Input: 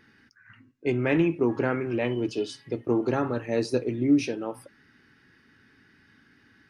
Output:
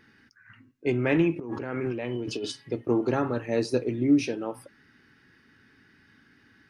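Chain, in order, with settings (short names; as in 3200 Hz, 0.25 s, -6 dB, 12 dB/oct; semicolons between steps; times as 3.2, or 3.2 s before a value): 1.36–2.52 negative-ratio compressor -32 dBFS, ratio -1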